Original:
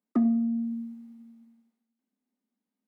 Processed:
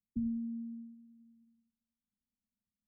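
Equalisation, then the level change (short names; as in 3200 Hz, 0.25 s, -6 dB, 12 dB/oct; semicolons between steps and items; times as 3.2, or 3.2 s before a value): inverse Chebyshev low-pass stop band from 500 Hz, stop band 70 dB; +15.5 dB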